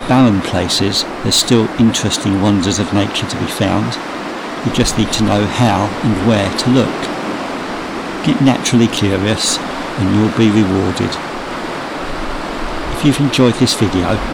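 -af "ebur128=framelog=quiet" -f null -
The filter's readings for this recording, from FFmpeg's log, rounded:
Integrated loudness:
  I:         -14.7 LUFS
  Threshold: -24.7 LUFS
Loudness range:
  LRA:         2.6 LU
  Threshold: -35.0 LUFS
  LRA low:   -16.3 LUFS
  LRA high:  -13.8 LUFS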